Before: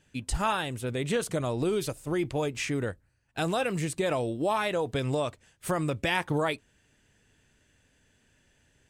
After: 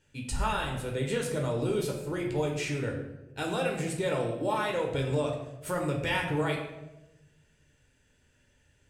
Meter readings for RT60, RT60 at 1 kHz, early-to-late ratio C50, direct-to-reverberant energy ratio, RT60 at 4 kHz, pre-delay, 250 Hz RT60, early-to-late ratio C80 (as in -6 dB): 1.0 s, 0.85 s, 5.5 dB, 0.0 dB, 0.65 s, 9 ms, 1.2 s, 7.5 dB